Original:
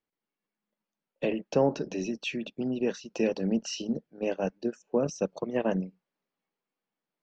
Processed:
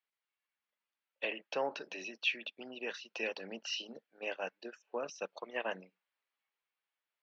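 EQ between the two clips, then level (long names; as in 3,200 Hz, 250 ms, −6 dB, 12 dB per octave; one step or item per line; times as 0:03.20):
high-pass filter 1,300 Hz 6 dB per octave
Bessel low-pass filter 2,400 Hz, order 4
spectral tilt +4 dB per octave
+1.5 dB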